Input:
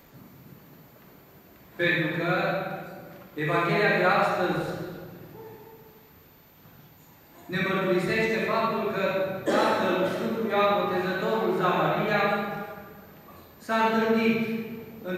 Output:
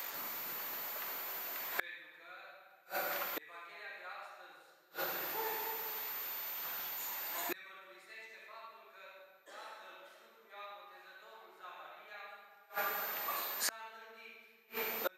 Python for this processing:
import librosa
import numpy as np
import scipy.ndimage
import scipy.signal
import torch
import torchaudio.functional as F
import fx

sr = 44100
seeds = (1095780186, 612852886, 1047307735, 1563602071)

y = fx.gate_flip(x, sr, shuts_db=-28.0, range_db=-36)
y = scipy.signal.sosfilt(scipy.signal.butter(2, 880.0, 'highpass', fs=sr, output='sos'), y)
y = fx.high_shelf(y, sr, hz=4800.0, db=4.5)
y = y * librosa.db_to_amplitude(12.5)